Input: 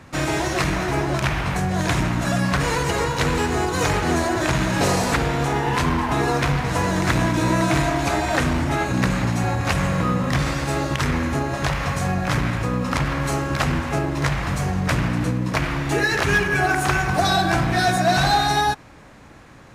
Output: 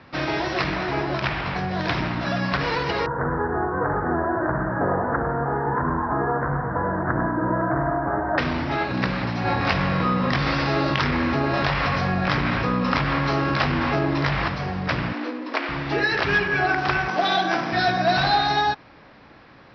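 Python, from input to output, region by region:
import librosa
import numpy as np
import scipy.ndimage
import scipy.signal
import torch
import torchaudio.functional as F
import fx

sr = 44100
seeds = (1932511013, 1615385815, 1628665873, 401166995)

y = fx.chain(x, sr, fx.steep_lowpass(hz=1700.0, slope=72),
    fx.echo_single(ms=99, db=-9.5), at=(3.06, 8.38))
y = fx.chain(y, sr, fx.doubler(ms=21.0, db=-9.5),
    fx.env_flatten(amount_pct=70), at=(9.45, 14.48))
y = fx.chain(y, sr, fx.median_filter(points=5),
    fx.steep_highpass(hz=230.0, slope=96), at=(15.13, 15.69))
y = fx.chain(y, sr, fx.highpass(hz=190.0, slope=24),
    fx.resample_bad(factor=6, down='none', up='hold'), at=(17.08, 17.73))
y = scipy.signal.sosfilt(scipy.signal.butter(16, 5400.0, 'lowpass', fs=sr, output='sos'), y)
y = fx.low_shelf(y, sr, hz=140.0, db=-9.5)
y = y * 10.0 ** (-1.0 / 20.0)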